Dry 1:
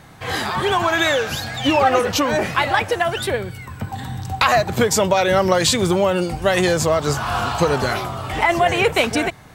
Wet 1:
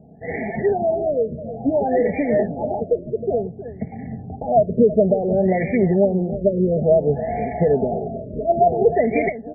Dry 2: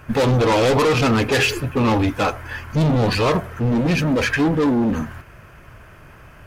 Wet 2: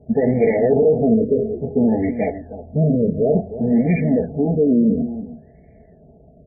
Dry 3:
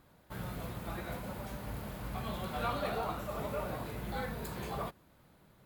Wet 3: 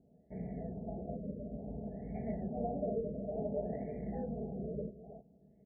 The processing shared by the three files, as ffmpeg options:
-af "highpass=75,aecho=1:1:4.6:0.71,adynamicsmooth=sensitivity=3:basefreq=800,asuperstop=centerf=1200:order=12:qfactor=1.1,aecho=1:1:314:0.224,afftfilt=real='re*lt(b*sr/1024,630*pow(2400/630,0.5+0.5*sin(2*PI*0.57*pts/sr)))':imag='im*lt(b*sr/1024,630*pow(2400/630,0.5+0.5*sin(2*PI*0.57*pts/sr)))':win_size=1024:overlap=0.75"

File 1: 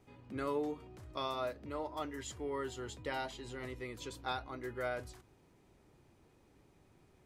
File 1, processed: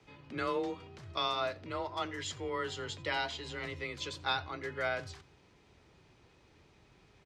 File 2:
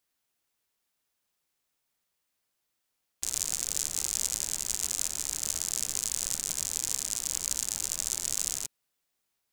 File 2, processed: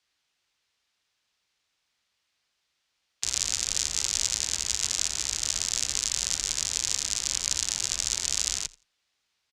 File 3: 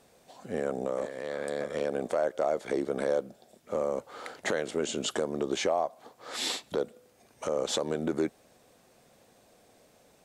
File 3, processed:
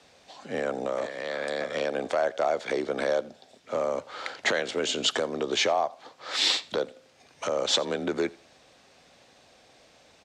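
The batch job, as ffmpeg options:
-filter_complex "[0:a]acrossover=split=100|5800[a][b][c];[a]aecho=1:1:1.4:0.79[d];[b]crystalizer=i=9.5:c=0[e];[d][e][c]amix=inputs=3:normalize=0,afreqshift=26,aemphasis=mode=reproduction:type=50kf,asplit=2[f][g];[g]aecho=0:1:85|170:0.0708|0.0135[h];[f][h]amix=inputs=2:normalize=0" -ar 32000 -c:a ac3 -b:a 320k

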